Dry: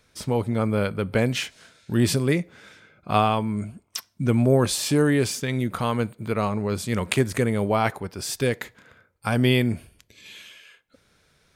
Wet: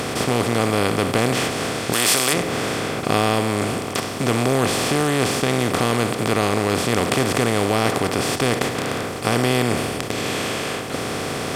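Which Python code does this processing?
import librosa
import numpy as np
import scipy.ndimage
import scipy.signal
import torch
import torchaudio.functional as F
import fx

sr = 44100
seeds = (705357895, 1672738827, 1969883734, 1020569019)

y = fx.bin_compress(x, sr, power=0.2)
y = fx.tilt_eq(y, sr, slope=3.5, at=(1.92, 2.32), fade=0.02)
y = F.gain(torch.from_numpy(y), -5.0).numpy()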